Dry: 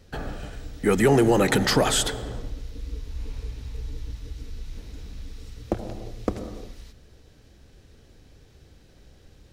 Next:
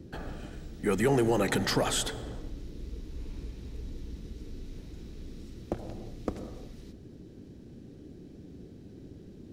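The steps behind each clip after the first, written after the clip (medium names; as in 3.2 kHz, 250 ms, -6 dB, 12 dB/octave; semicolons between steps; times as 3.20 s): band noise 55–360 Hz -41 dBFS; trim -7 dB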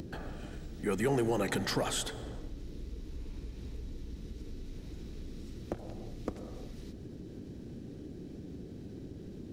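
upward compressor, threshold -31 dBFS; trim -4.5 dB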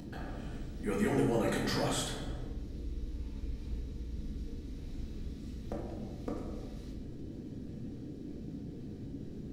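simulated room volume 330 m³, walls mixed, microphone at 1.8 m; trim -6 dB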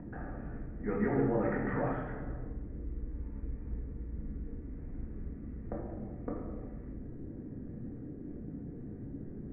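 steep low-pass 2 kHz 48 dB/octave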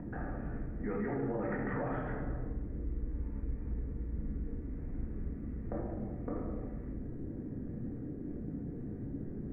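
peak limiter -30 dBFS, peak gain reduction 11.5 dB; trim +2.5 dB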